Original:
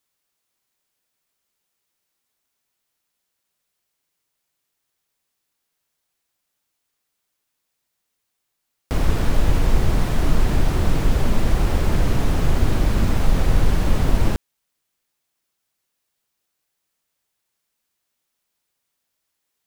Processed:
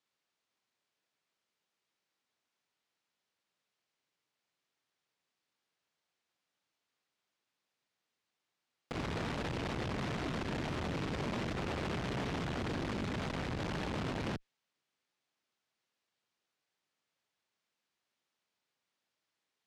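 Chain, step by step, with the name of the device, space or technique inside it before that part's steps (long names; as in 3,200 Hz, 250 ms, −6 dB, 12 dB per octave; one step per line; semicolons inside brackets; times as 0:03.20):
dynamic equaliser 2,600 Hz, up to +3 dB, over −46 dBFS, Q 0.82
valve radio (band-pass filter 120–4,800 Hz; tube saturation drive 29 dB, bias 0.45; saturating transformer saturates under 210 Hz)
level −2.5 dB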